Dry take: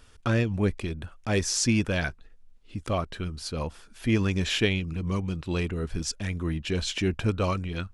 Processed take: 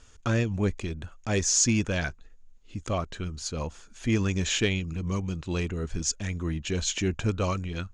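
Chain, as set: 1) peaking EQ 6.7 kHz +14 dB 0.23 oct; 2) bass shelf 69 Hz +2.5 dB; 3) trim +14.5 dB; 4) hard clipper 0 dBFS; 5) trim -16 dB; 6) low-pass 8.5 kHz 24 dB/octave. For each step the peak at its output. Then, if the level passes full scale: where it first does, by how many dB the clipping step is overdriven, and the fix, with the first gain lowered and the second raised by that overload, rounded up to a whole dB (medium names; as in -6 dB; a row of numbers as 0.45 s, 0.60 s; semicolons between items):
-7.0 dBFS, -7.0 dBFS, +7.5 dBFS, 0.0 dBFS, -16.0 dBFS, -14.5 dBFS; step 3, 7.5 dB; step 3 +6.5 dB, step 5 -8 dB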